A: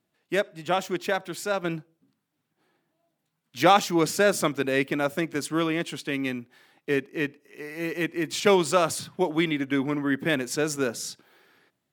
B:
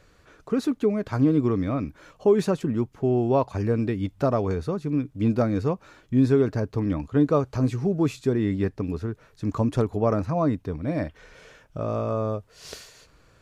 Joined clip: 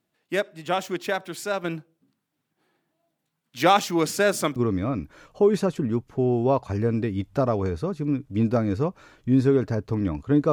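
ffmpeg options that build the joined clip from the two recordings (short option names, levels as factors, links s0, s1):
-filter_complex "[0:a]apad=whole_dur=10.52,atrim=end=10.52,atrim=end=4.562[s0];[1:a]atrim=start=1.408:end=7.37[s1];[s0][s1]acrossfade=d=0.004:c1=hsin:c2=hsin"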